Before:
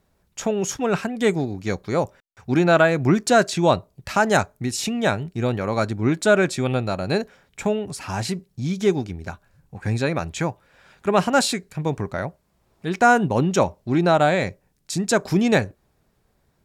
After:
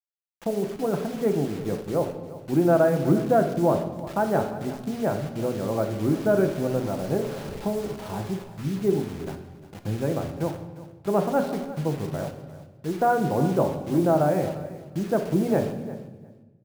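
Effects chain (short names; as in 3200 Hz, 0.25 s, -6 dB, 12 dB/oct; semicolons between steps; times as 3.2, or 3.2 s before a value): 6.07–8.33 delta modulation 64 kbps, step -25 dBFS; Bessel low-pass 560 Hz, order 2; low shelf 180 Hz -7.5 dB; notches 60/120/180/240/300/360/420 Hz; bit-crush 7-bit; feedback echo 0.353 s, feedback 16%, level -16 dB; shoebox room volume 690 m³, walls mixed, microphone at 0.73 m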